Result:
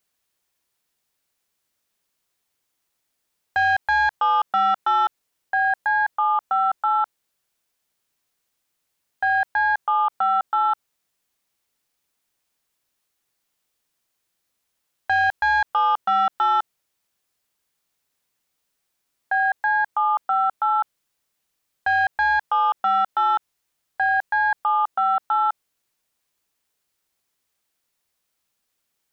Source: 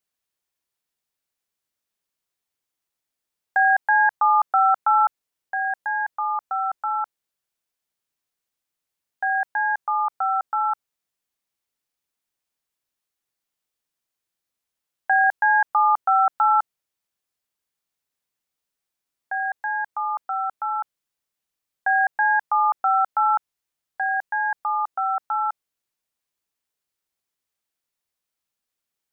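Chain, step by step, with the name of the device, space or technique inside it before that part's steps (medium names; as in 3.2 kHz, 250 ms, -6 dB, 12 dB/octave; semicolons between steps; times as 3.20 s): soft clipper into limiter (saturation -13.5 dBFS, distortion -18 dB; peak limiter -22 dBFS, peak gain reduction 7.5 dB); trim +8 dB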